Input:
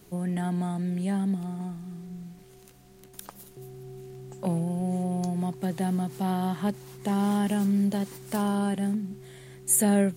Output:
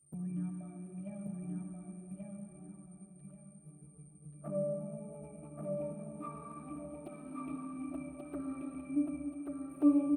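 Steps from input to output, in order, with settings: gliding pitch shift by +6 st starting unshifted; gate -43 dBFS, range -12 dB; high shelf 3100 Hz -8.5 dB; in parallel at -1 dB: limiter -23.5 dBFS, peak gain reduction 10.5 dB; on the sum: octave resonator D, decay 0.5 s; whine 8900 Hz -69 dBFS; envelope flanger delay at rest 9.3 ms, full sweep at -39.5 dBFS; feedback echo 1.132 s, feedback 27%, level -3 dB; on a send at -5 dB: reverb RT60 2.8 s, pre-delay 52 ms; on the sum: gain +7 dB

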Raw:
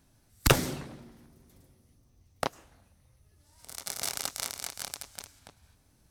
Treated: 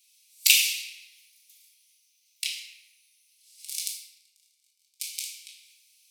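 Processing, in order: steep high-pass 2300 Hz 72 dB/oct; 3.82–5 flipped gate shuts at -27 dBFS, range -41 dB; reverb RT60 1.0 s, pre-delay 4 ms, DRR -3.5 dB; gain +7 dB

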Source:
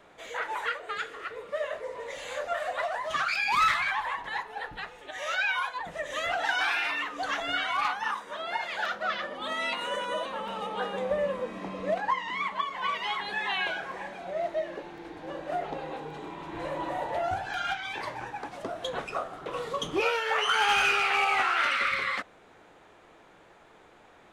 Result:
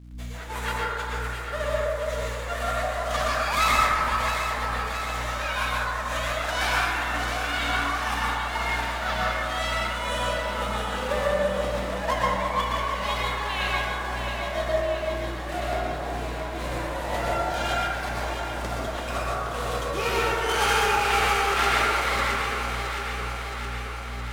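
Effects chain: spectral whitening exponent 0.6; de-hum 95.23 Hz, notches 33; in parallel at -3 dB: compressor, threshold -41 dBFS, peak gain reduction 19.5 dB; on the sum: crossover distortion -47 dBFS; hum 60 Hz, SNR 11 dB; tremolo triangle 2 Hz, depth 80%; echo with dull and thin repeats by turns 0.334 s, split 1300 Hz, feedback 81%, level -5 dB; reverb RT60 1.4 s, pre-delay 0.107 s, DRR -4.5 dB

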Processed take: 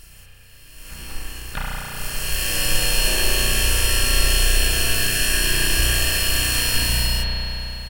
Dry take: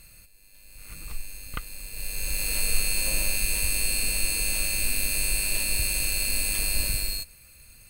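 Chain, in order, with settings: harmoniser -7 st -2 dB, +3 st -1 dB; spring tank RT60 3.7 s, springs 33 ms, chirp 30 ms, DRR -6.5 dB

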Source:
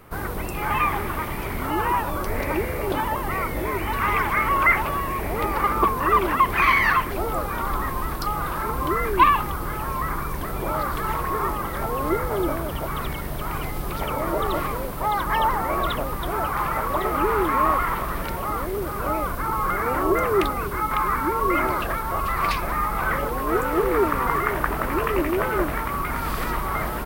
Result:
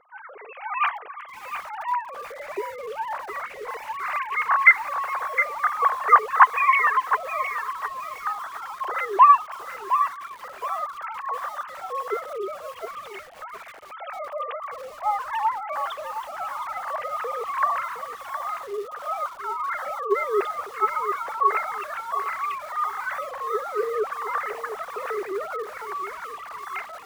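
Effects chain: sine-wave speech; lo-fi delay 0.713 s, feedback 35%, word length 6-bit, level -9 dB; gain -3 dB

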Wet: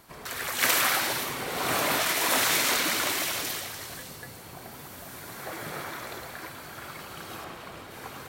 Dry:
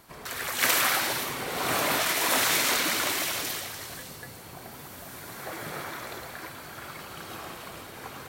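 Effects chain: 7.44–7.91 high shelf 5300 Hz -8 dB

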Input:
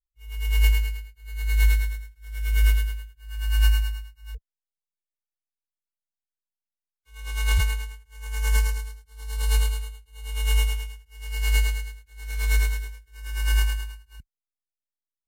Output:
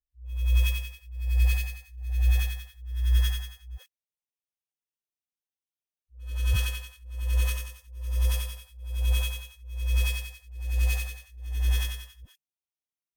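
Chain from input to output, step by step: minimum comb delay 0.38 ms; dispersion highs, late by 0.133 s, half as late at 480 Hz; varispeed +16%; gain -3 dB

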